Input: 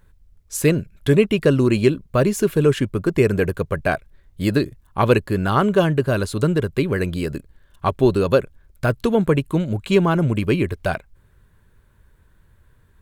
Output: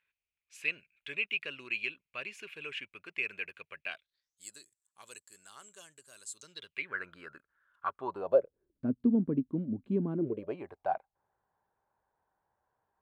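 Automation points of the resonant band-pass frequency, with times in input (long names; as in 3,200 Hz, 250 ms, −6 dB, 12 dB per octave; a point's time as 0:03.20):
resonant band-pass, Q 7.1
0:03.84 2,500 Hz
0:04.45 7,700 Hz
0:06.34 7,700 Hz
0:06.97 1,400 Hz
0:07.90 1,400 Hz
0:08.86 250 Hz
0:10.12 250 Hz
0:10.58 790 Hz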